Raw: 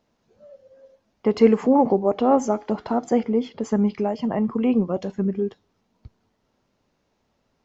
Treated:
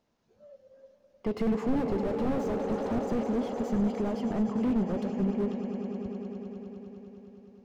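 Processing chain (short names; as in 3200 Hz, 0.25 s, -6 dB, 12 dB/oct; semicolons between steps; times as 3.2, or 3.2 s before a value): swelling echo 0.102 s, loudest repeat 5, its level -15.5 dB; slew limiter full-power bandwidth 34 Hz; gain -5.5 dB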